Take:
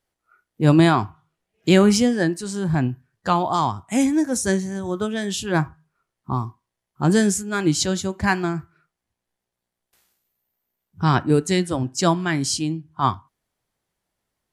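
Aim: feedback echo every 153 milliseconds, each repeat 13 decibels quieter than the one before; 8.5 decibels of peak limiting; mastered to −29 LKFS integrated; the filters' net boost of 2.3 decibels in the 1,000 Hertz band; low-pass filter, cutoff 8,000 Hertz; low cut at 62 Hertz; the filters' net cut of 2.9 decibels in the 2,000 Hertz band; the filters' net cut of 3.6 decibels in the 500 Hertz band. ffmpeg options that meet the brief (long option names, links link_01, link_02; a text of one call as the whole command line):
ffmpeg -i in.wav -af "highpass=62,lowpass=8000,equalizer=frequency=500:width_type=o:gain=-6.5,equalizer=frequency=1000:width_type=o:gain=6,equalizer=frequency=2000:width_type=o:gain=-6,alimiter=limit=-11.5dB:level=0:latency=1,aecho=1:1:153|306|459:0.224|0.0493|0.0108,volume=-5dB" out.wav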